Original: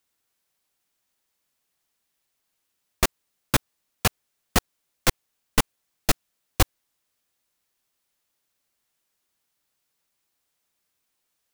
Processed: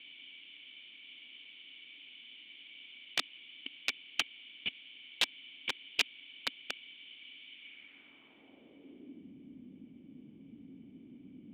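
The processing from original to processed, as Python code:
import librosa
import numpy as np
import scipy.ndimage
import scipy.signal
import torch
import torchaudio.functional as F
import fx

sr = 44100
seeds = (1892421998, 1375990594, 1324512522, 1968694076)

y = fx.block_reorder(x, sr, ms=122.0, group=8)
y = fx.quant_dither(y, sr, seeds[0], bits=6, dither='triangular')
y = fx.formant_cascade(y, sr, vowel='i')
y = (np.mod(10.0 ** (23.5 / 20.0) * y + 1.0, 2.0) - 1.0) / 10.0 ** (23.5 / 20.0)
y = fx.filter_sweep_bandpass(y, sr, from_hz=3000.0, to_hz=210.0, start_s=7.52, end_s=9.38, q=1.7)
y = F.gain(torch.from_numpy(y), 10.0).numpy()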